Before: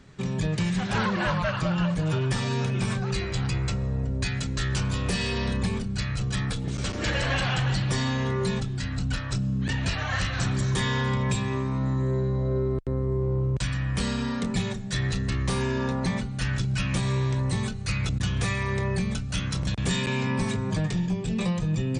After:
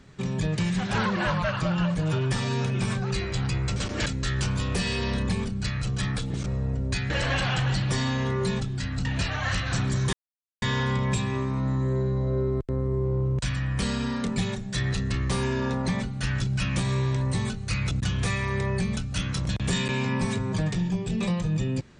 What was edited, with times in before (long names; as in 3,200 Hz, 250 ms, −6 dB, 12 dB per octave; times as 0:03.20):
0:03.76–0:04.40: swap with 0:06.80–0:07.10
0:09.05–0:09.72: remove
0:10.80: splice in silence 0.49 s